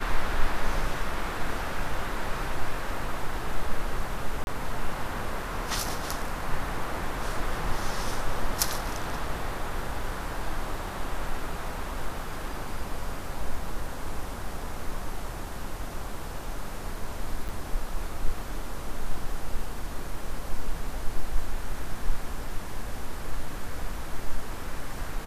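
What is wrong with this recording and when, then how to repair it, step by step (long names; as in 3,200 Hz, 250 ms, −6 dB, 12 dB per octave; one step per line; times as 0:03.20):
0:04.44–0:04.47: drop-out 31 ms
0:17.48–0:17.49: drop-out 7.8 ms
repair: repair the gap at 0:04.44, 31 ms
repair the gap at 0:17.48, 7.8 ms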